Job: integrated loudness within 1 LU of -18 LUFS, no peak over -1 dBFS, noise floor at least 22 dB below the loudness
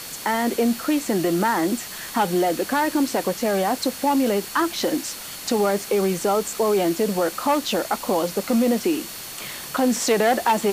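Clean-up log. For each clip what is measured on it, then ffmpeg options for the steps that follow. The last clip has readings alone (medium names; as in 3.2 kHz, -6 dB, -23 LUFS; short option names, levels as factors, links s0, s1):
steady tone 4.4 kHz; tone level -44 dBFS; noise floor -36 dBFS; noise floor target -45 dBFS; loudness -22.5 LUFS; peak level -7.0 dBFS; loudness target -18.0 LUFS
-> -af "bandreject=f=4400:w=30"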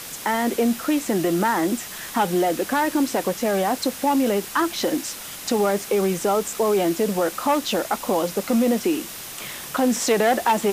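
steady tone not found; noise floor -36 dBFS; noise floor target -45 dBFS
-> -af "afftdn=nr=9:nf=-36"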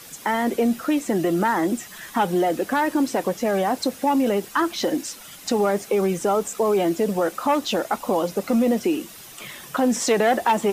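noise floor -42 dBFS; noise floor target -45 dBFS
-> -af "afftdn=nr=6:nf=-42"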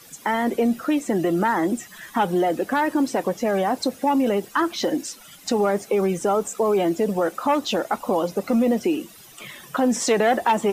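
noise floor -47 dBFS; loudness -22.5 LUFS; peak level -7.5 dBFS; loudness target -18.0 LUFS
-> -af "volume=1.68"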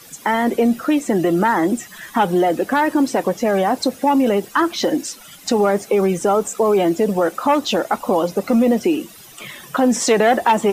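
loudness -18.0 LUFS; peak level -3.0 dBFS; noise floor -42 dBFS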